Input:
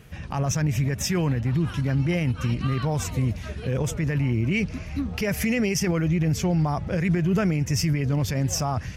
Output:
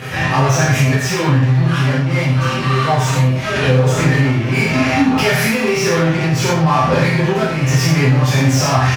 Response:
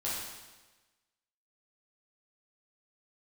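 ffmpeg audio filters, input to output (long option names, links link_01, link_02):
-filter_complex "[0:a]tremolo=f=42:d=0.571,asplit=2[link_01][link_02];[link_02]highpass=frequency=720:poles=1,volume=30dB,asoftclip=type=tanh:threshold=-15dB[link_03];[link_01][link_03]amix=inputs=2:normalize=0,lowpass=frequency=2600:poles=1,volume=-6dB[link_04];[1:a]atrim=start_sample=2205,afade=type=out:start_time=0.21:duration=0.01,atrim=end_sample=9702,asetrate=52920,aresample=44100[link_05];[link_04][link_05]afir=irnorm=-1:irlink=0,asettb=1/sr,asplit=3[link_06][link_07][link_08];[link_06]atrim=end=0.994[link_09];[link_07]atrim=start=0.99:end=3.56,asetpts=PTS-STARTPTS,afade=type=in:duration=0.004:curve=qsin,afade=type=out:start_time=2.566:duration=0.004:curve=qsin,flanger=delay=4.7:depth=2.8:regen=51:speed=1.2:shape=triangular[link_10];[link_08]atrim=start=3.556[link_11];[link_09][link_10]acrossfade=duration=0.004:curve1=hsin:curve2=qsin[link_12];[link_12][link_11]acrossfade=duration=0.004:curve1=qsin:curve2=hsin,lowshelf=frequency=120:gain=7,aecho=1:1:85:0.335,acompressor=threshold=-16dB:ratio=6,highpass=95,volume=8dB"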